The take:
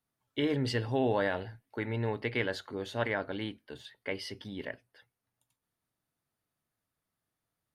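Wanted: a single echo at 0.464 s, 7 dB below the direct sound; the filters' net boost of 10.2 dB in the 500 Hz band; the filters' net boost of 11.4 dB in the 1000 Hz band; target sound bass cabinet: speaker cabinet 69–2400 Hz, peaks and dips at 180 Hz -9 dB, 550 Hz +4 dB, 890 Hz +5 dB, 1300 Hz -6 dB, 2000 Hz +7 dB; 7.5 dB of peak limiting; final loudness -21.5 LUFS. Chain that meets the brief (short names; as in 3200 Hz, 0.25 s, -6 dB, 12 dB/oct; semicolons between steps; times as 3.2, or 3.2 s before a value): bell 500 Hz +7.5 dB; bell 1000 Hz +8 dB; limiter -17 dBFS; speaker cabinet 69–2400 Hz, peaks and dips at 180 Hz -9 dB, 550 Hz +4 dB, 890 Hz +5 dB, 1300 Hz -6 dB, 2000 Hz +7 dB; echo 0.464 s -7 dB; gain +6.5 dB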